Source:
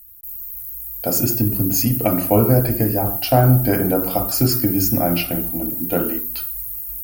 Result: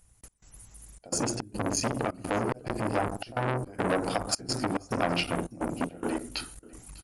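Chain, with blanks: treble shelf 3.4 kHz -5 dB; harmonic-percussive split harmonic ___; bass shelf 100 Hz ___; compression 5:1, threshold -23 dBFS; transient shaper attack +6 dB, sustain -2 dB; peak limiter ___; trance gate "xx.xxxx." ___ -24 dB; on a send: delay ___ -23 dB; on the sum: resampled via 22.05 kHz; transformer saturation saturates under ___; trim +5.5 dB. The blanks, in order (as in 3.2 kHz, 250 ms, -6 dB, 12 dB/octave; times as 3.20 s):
-6 dB, -4.5 dB, -16.5 dBFS, 107 bpm, 600 ms, 1.3 kHz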